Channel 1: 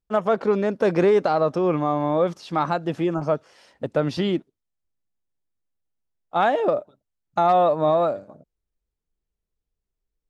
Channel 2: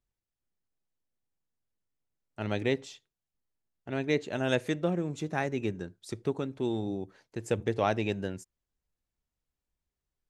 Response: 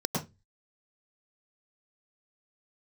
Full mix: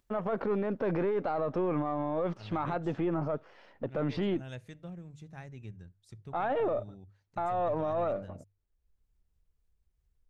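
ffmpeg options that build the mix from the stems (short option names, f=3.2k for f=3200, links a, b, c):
-filter_complex "[0:a]aeval=exprs='if(lt(val(0),0),0.708*val(0),val(0))':c=same,lowpass=2.4k,alimiter=limit=-19.5dB:level=0:latency=1:release=12,volume=0dB[a];[1:a]bandreject=f=50:t=h:w=6,bandreject=f=100:t=h:w=6,bandreject=f=150:t=h:w=6,asubboost=boost=11.5:cutoff=100,acompressor=mode=upward:threshold=-40dB:ratio=2.5,volume=-17dB[b];[a][b]amix=inputs=2:normalize=0,alimiter=limit=-24dB:level=0:latency=1:release=48"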